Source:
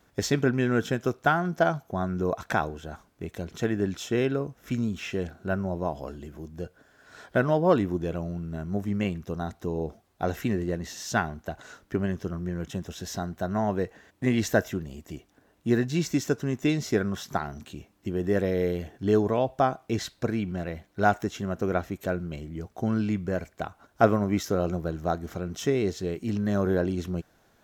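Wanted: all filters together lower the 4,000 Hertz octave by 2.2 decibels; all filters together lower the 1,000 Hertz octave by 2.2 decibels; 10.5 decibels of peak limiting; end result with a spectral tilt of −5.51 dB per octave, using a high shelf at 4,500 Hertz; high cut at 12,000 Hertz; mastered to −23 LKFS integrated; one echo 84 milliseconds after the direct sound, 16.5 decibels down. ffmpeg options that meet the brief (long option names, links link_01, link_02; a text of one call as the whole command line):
ffmpeg -i in.wav -af "lowpass=12000,equalizer=frequency=1000:width_type=o:gain=-3.5,equalizer=frequency=4000:width_type=o:gain=-8.5,highshelf=frequency=4500:gain=9,alimiter=limit=-17dB:level=0:latency=1,aecho=1:1:84:0.15,volume=7.5dB" out.wav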